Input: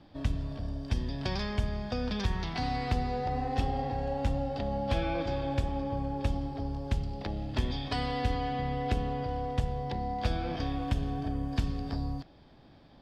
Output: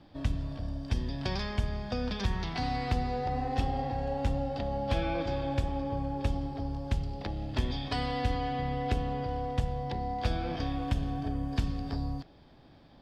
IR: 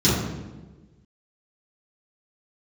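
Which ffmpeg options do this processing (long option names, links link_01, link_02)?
-af "bandreject=frequency=208.7:width_type=h:width=4,bandreject=frequency=417.4:width_type=h:width=4,bandreject=frequency=626.1:width_type=h:width=4"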